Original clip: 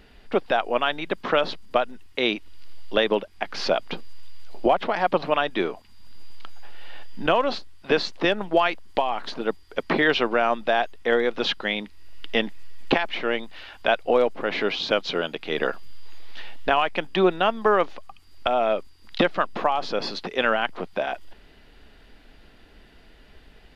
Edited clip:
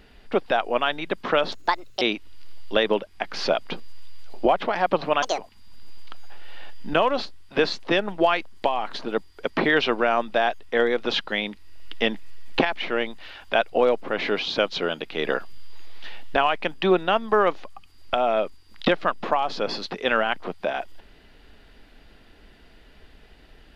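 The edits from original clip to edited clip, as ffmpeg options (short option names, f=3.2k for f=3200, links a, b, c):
-filter_complex "[0:a]asplit=5[a][b][c][d][e];[a]atrim=end=1.524[f];[b]atrim=start=1.52:end=2.22,asetpts=PTS-STARTPTS,asetrate=62622,aresample=44100,atrim=end_sample=21739,asetpts=PTS-STARTPTS[g];[c]atrim=start=2.216:end=5.434[h];[d]atrim=start=5.43:end=5.71,asetpts=PTS-STARTPTS,asetrate=78057,aresample=44100,atrim=end_sample=6976,asetpts=PTS-STARTPTS[i];[e]atrim=start=5.706[j];[f][g]acrossfade=d=0.004:c1=hsin:c2=hsin[k];[k][h]acrossfade=d=0.004:c1=hsin:c2=hsin[l];[l][i]acrossfade=d=0.004:c1=hsin:c2=hsin[m];[m][j]acrossfade=d=0.004:c1=hsin:c2=hsin"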